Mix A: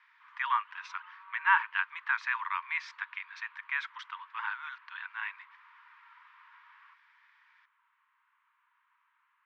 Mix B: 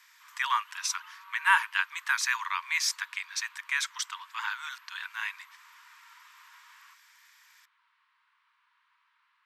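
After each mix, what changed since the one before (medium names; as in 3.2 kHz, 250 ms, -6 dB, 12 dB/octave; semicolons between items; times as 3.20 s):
master: remove Bessel low-pass 1.9 kHz, order 4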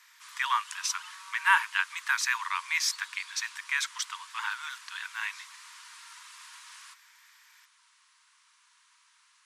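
background: remove distance through air 470 m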